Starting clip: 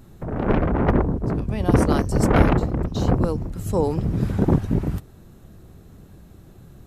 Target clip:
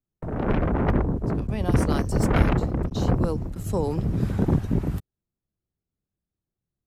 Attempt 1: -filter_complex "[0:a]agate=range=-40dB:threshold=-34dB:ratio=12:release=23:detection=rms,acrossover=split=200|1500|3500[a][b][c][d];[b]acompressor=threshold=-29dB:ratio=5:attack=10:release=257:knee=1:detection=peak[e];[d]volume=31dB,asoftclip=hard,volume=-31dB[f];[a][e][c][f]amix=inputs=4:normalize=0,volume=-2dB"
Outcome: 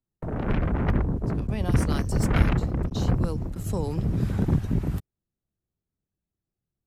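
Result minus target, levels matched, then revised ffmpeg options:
compressor: peak gain reduction +6.5 dB
-filter_complex "[0:a]agate=range=-40dB:threshold=-34dB:ratio=12:release=23:detection=rms,acrossover=split=200|1500|3500[a][b][c][d];[b]acompressor=threshold=-21dB:ratio=5:attack=10:release=257:knee=1:detection=peak[e];[d]volume=31dB,asoftclip=hard,volume=-31dB[f];[a][e][c][f]amix=inputs=4:normalize=0,volume=-2dB"

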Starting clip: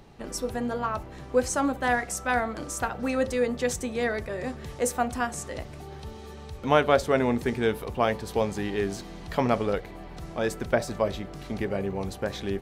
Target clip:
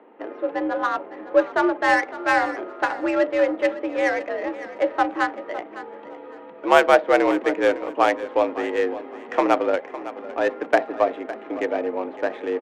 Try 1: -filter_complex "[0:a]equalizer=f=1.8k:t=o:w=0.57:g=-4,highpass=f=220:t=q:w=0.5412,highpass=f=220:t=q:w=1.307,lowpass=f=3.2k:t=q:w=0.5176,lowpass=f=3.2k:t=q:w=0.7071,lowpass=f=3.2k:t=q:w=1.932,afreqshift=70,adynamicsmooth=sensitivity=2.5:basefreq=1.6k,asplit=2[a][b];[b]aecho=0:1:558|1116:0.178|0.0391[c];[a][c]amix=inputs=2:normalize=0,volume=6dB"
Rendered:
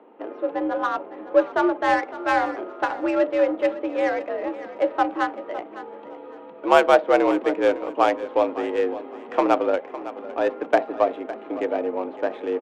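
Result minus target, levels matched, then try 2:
2000 Hz band -3.5 dB
-filter_complex "[0:a]equalizer=f=1.8k:t=o:w=0.57:g=2.5,highpass=f=220:t=q:w=0.5412,highpass=f=220:t=q:w=1.307,lowpass=f=3.2k:t=q:w=0.5176,lowpass=f=3.2k:t=q:w=0.7071,lowpass=f=3.2k:t=q:w=1.932,afreqshift=70,adynamicsmooth=sensitivity=2.5:basefreq=1.6k,asplit=2[a][b];[b]aecho=0:1:558|1116:0.178|0.0391[c];[a][c]amix=inputs=2:normalize=0,volume=6dB"

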